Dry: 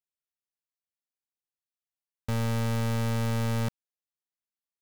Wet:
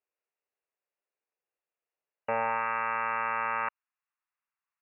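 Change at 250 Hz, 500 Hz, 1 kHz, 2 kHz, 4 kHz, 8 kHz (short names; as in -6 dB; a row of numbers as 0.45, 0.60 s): -18.0 dB, -1.0 dB, +10.0 dB, +8.0 dB, under -15 dB, under -35 dB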